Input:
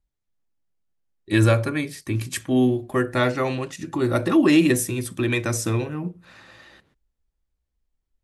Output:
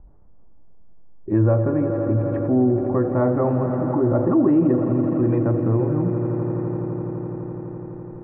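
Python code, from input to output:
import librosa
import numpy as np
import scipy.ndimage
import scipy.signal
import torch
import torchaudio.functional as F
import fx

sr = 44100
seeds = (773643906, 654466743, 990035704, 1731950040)

y = scipy.signal.sosfilt(scipy.signal.butter(4, 1000.0, 'lowpass', fs=sr, output='sos'), x)
y = fx.echo_swell(y, sr, ms=84, loudest=5, wet_db=-15.5)
y = fx.env_flatten(y, sr, amount_pct=50)
y = F.gain(torch.from_numpy(y), -1.5).numpy()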